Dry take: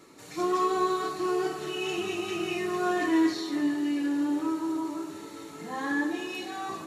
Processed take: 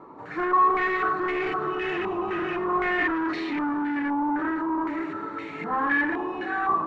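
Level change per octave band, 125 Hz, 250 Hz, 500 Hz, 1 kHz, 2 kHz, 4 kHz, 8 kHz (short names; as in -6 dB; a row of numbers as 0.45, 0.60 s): +3.0 dB, 0.0 dB, +0.5 dB, +7.5 dB, +8.5 dB, -5.0 dB, under -20 dB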